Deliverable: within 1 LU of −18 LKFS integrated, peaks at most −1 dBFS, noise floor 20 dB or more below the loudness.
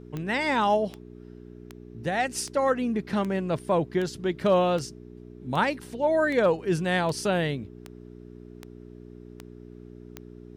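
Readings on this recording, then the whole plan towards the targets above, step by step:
number of clicks 14; mains hum 60 Hz; hum harmonics up to 420 Hz; level of the hum −45 dBFS; integrated loudness −26.0 LKFS; sample peak −12.5 dBFS; target loudness −18.0 LKFS
→ click removal
hum removal 60 Hz, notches 7
level +8 dB

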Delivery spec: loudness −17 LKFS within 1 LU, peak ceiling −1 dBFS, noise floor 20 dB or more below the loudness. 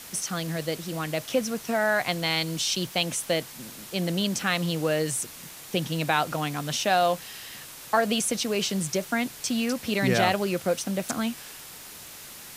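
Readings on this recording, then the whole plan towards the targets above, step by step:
background noise floor −44 dBFS; target noise floor −47 dBFS; integrated loudness −26.5 LKFS; sample peak −8.5 dBFS; target loudness −17.0 LKFS
→ broadband denoise 6 dB, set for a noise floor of −44 dBFS
level +9.5 dB
brickwall limiter −1 dBFS

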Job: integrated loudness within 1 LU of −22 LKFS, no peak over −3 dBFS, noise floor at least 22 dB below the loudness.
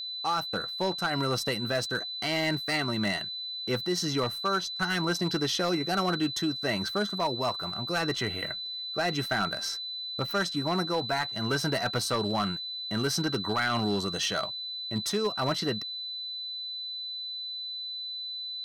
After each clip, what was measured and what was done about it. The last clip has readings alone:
share of clipped samples 0.6%; peaks flattened at −21.0 dBFS; interfering tone 4,000 Hz; level of the tone −34 dBFS; integrated loudness −29.5 LKFS; sample peak −21.0 dBFS; target loudness −22.0 LKFS
→ clipped peaks rebuilt −21 dBFS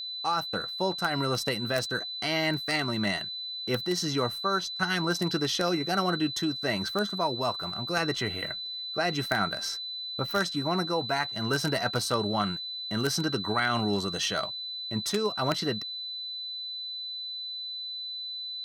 share of clipped samples 0.0%; interfering tone 4,000 Hz; level of the tone −34 dBFS
→ notch filter 4,000 Hz, Q 30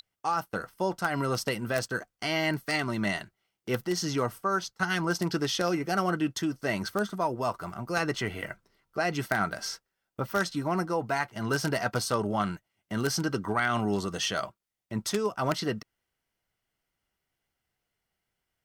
interfering tone none found; integrated loudness −30.0 LKFS; sample peak −11.5 dBFS; target loudness −22.0 LKFS
→ level +8 dB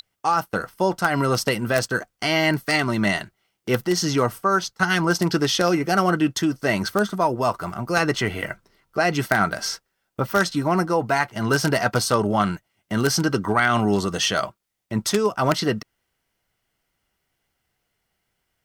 integrated loudness −22.0 LKFS; sample peak −3.5 dBFS; background noise floor −76 dBFS

